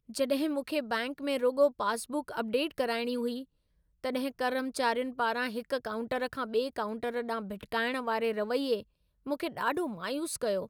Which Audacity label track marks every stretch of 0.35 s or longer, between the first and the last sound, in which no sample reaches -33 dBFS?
3.400000	4.050000	silence
8.800000	9.270000	silence